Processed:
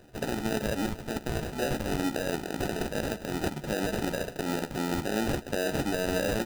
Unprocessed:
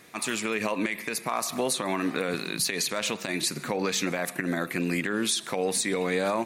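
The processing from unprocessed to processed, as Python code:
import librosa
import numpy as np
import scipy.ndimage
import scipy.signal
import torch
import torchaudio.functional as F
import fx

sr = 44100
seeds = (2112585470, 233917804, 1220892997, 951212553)

y = fx.sample_hold(x, sr, seeds[0], rate_hz=1100.0, jitter_pct=0)
y = fx.doubler(y, sr, ms=14.0, db=-12.5)
y = y * 10.0 ** (-2.0 / 20.0)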